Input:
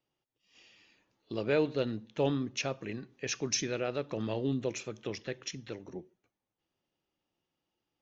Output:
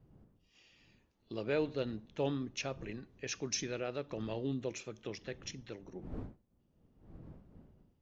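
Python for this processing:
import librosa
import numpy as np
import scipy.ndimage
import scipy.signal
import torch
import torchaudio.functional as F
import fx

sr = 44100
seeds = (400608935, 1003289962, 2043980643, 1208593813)

y = fx.dmg_wind(x, sr, seeds[0], corner_hz=210.0, level_db=-50.0)
y = y * 10.0 ** (-5.0 / 20.0)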